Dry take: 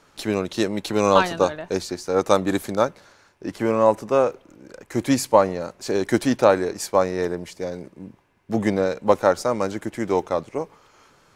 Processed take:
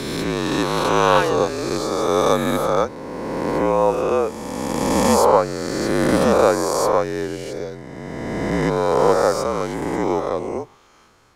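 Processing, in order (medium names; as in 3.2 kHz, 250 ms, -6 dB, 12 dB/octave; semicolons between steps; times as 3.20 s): reverse spectral sustain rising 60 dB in 2.50 s; frequency shift -46 Hz; trim -2.5 dB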